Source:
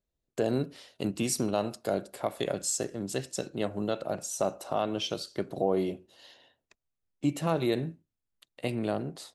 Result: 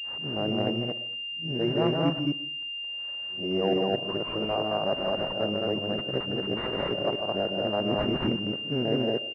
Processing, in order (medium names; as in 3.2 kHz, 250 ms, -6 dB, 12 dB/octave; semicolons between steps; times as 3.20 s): reverse the whole clip; loudspeakers at several distances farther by 52 m -5 dB, 75 m -1 dB; reverberation RT60 0.50 s, pre-delay 75 ms, DRR 15 dB; class-D stage that switches slowly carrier 2.8 kHz